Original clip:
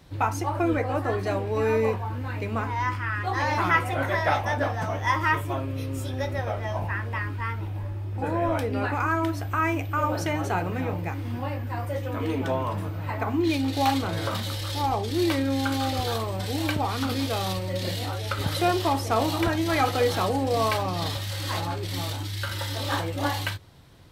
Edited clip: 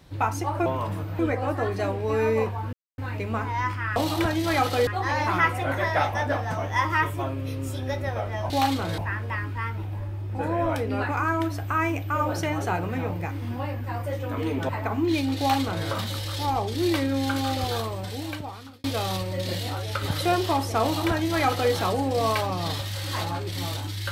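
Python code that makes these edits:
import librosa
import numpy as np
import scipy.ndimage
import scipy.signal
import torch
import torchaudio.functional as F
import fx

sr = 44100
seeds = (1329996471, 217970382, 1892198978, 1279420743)

y = fx.edit(x, sr, fx.insert_silence(at_s=2.2, length_s=0.25),
    fx.move(start_s=12.52, length_s=0.53, to_s=0.66),
    fx.duplicate(start_s=13.74, length_s=0.48, to_s=6.81),
    fx.fade_out_span(start_s=16.08, length_s=1.12),
    fx.duplicate(start_s=19.18, length_s=0.91, to_s=3.18), tone=tone)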